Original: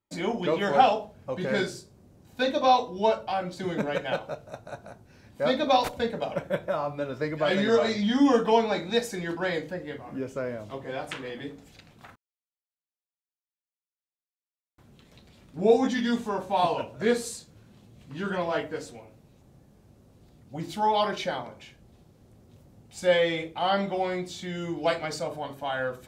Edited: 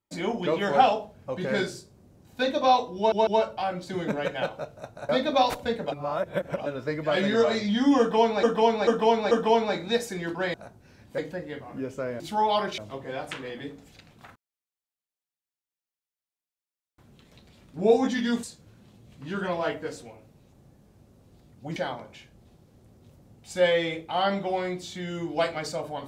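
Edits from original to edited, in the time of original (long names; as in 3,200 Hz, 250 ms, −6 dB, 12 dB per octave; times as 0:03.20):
0:02.97: stutter 0.15 s, 3 plays
0:04.79–0:05.43: move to 0:09.56
0:06.26–0:07.00: reverse
0:08.33–0:08.77: repeat, 4 plays
0:16.23–0:17.32: remove
0:20.65–0:21.23: move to 0:10.58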